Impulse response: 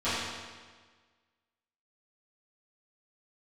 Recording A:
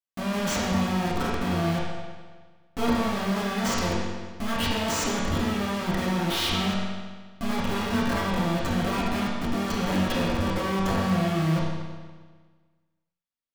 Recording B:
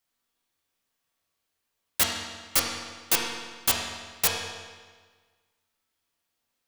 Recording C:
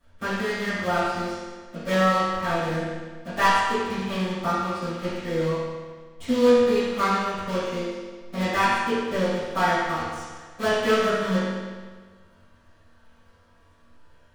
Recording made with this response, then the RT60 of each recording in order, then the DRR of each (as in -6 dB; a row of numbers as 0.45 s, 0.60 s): C; 1.5 s, 1.5 s, 1.5 s; -7.5 dB, -2.0 dB, -17.0 dB